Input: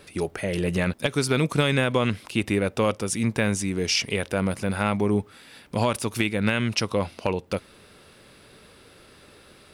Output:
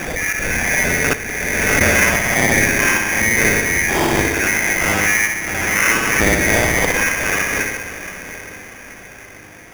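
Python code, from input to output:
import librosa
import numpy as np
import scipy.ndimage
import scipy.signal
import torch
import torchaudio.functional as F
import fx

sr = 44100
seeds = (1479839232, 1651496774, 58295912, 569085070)

p1 = fx.band_swap(x, sr, width_hz=2000)
p2 = fx.low_shelf(p1, sr, hz=470.0, db=8.5)
p3 = fx.rev_spring(p2, sr, rt60_s=1.0, pass_ms=(59,), chirp_ms=45, drr_db=-8.0)
p4 = fx.over_compress(p3, sr, threshold_db=-27.0, ratio=-0.5, at=(1.13, 1.81))
p5 = fx.high_shelf(p4, sr, hz=5000.0, db=-12.0)
p6 = p5 + fx.echo_diffused(p5, sr, ms=695, feedback_pct=49, wet_db=-12.5, dry=0)
p7 = fx.sample_hold(p6, sr, seeds[0], rate_hz=4100.0, jitter_pct=0)
y = fx.pre_swell(p7, sr, db_per_s=23.0)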